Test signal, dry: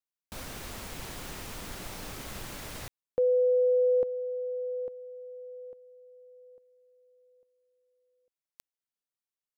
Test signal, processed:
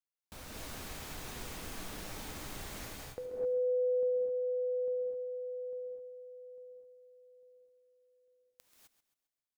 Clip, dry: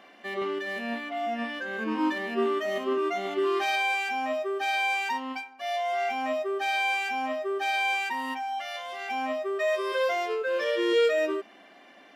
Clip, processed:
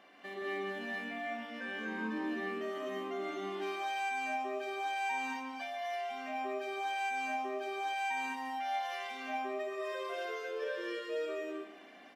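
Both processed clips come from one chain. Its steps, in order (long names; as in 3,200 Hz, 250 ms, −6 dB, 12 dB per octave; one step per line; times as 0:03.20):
dynamic equaliser 210 Hz, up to +4 dB, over −43 dBFS, Q 1.5
downward compressor 3 to 1, threshold −36 dBFS
on a send: repeating echo 134 ms, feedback 43%, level −13 dB
on the sum: reverb whose tail is shaped and stops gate 280 ms rising, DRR −3 dB
level −7.5 dB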